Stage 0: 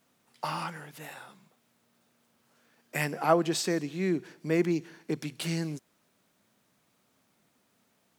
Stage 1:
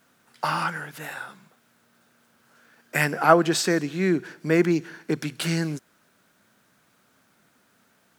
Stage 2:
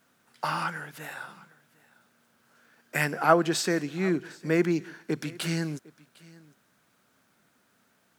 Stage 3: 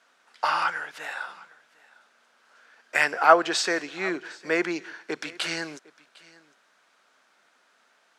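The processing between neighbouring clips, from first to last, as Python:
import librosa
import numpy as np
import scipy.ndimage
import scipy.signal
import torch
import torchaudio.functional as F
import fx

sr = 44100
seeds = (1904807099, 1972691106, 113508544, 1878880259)

y1 = fx.peak_eq(x, sr, hz=1500.0, db=8.5, octaves=0.47)
y1 = y1 * 10.0 ** (6.0 / 20.0)
y2 = y1 + 10.0 ** (-23.0 / 20.0) * np.pad(y1, (int(755 * sr / 1000.0), 0))[:len(y1)]
y2 = y2 * 10.0 ** (-4.0 / 20.0)
y3 = fx.bandpass_edges(y2, sr, low_hz=580.0, high_hz=6100.0)
y3 = y3 * 10.0 ** (6.0 / 20.0)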